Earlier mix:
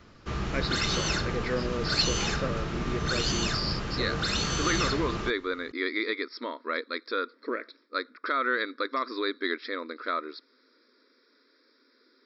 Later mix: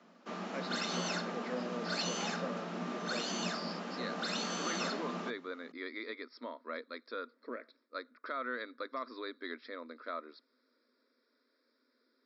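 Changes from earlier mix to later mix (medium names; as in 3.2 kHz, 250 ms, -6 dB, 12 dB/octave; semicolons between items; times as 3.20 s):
speech -5.0 dB; master: add rippled Chebyshev high-pass 170 Hz, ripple 9 dB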